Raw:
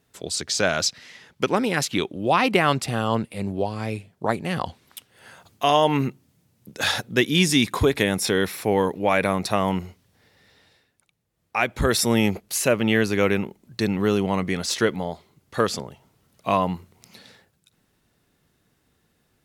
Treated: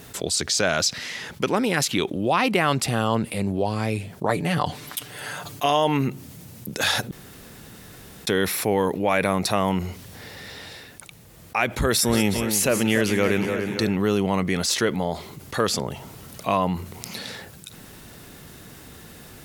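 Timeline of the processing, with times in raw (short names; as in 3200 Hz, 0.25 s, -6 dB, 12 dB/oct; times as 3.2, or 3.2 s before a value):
4.29–5.66 comb 6.8 ms
7.11–8.27 room tone
11.66–13.95 split-band echo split 1900 Hz, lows 0.288 s, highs 0.183 s, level -10 dB
whole clip: high shelf 8400 Hz +5 dB; fast leveller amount 50%; gain -3 dB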